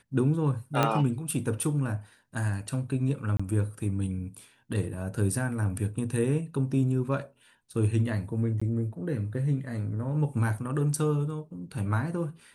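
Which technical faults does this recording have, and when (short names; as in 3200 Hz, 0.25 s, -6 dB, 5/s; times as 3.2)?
0.83 pop -10 dBFS
3.37–3.4 gap 25 ms
8.6–8.62 gap 15 ms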